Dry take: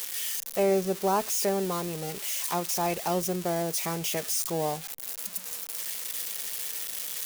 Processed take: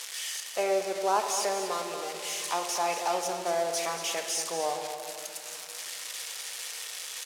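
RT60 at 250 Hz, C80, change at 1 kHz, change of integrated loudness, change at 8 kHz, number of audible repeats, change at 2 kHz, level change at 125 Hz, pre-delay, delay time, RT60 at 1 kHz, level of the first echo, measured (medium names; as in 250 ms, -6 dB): 3.2 s, 5.5 dB, +1.5 dB, -2.0 dB, -1.0 dB, 1, +2.5 dB, -17.5 dB, 13 ms, 232 ms, 2.4 s, -10.5 dB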